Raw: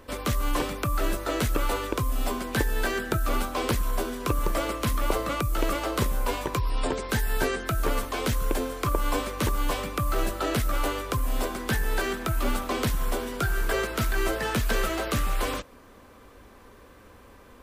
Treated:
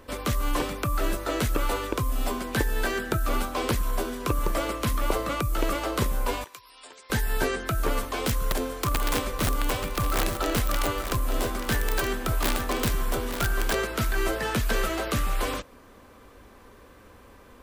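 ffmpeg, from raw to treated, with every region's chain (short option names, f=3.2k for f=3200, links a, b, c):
-filter_complex "[0:a]asettb=1/sr,asplit=3[a][b][c];[a]atrim=end=6.444[d];[b]atrim=start=6.44:end=7.1,asetpts=PTS-STARTPTS,afade=t=in:d=0.004:c=qsin,afade=t=out:st=0.656:d=0.004:c=qsin,lowpass=f=2.9k:p=1,aderivative,acompressor=mode=upward:threshold=-47dB:ratio=2.5:attack=3.2:release=140:knee=2.83:detection=peak[e];[c]atrim=start=7.096[f];[d][e]acrossfade=d=0.004:c1=hsin:c2=qsin[g];[g][f]acrossfade=d=0.004:c1=qsin:c2=hsin,asettb=1/sr,asplit=3[h][i][j];[h]atrim=end=8.034[k];[i]atrim=start=8.03:end=13.75,asetpts=PTS-STARTPTS,afade=t=in:d=0.004:c=qsin,afade=t=out:st=5.716:d=0.004:c=qsin,aeval=exprs='(mod(7.5*val(0)+1,2)-1)/7.5':c=same,aecho=1:1:881:0.355,atrim=end_sample=252252[l];[j]atrim=start=13.746[m];[k][l]acrossfade=d=0.004:c1=hsin:c2=qsin[n];[n][m]acrossfade=d=0.004:c1=qsin:c2=hsin"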